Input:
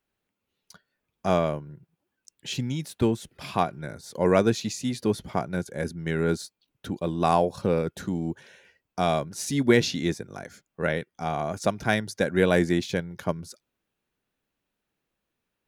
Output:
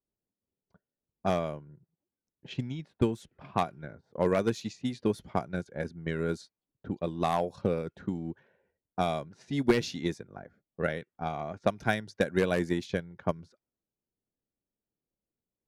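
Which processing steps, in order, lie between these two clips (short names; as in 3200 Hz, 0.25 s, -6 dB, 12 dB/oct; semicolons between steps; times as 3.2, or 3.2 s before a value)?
wavefolder -10.5 dBFS; transient shaper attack +7 dB, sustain -1 dB; low-pass opened by the level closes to 580 Hz, open at -18.5 dBFS; gain -8 dB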